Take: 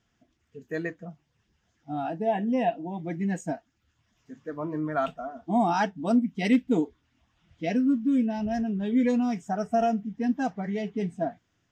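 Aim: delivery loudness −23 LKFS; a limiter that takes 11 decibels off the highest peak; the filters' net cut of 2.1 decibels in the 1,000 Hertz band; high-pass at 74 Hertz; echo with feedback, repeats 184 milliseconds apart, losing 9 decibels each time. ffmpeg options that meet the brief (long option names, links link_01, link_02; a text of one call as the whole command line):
ffmpeg -i in.wav -af "highpass=74,equalizer=frequency=1000:width_type=o:gain=-3.5,alimiter=limit=-23.5dB:level=0:latency=1,aecho=1:1:184|368|552|736:0.355|0.124|0.0435|0.0152,volume=9dB" out.wav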